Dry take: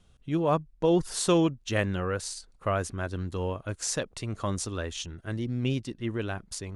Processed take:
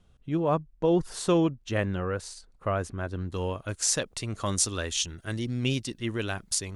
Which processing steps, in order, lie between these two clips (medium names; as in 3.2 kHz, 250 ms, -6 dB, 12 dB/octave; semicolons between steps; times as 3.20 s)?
treble shelf 2.6 kHz -6.5 dB, from 3.34 s +6.5 dB, from 4.46 s +11.5 dB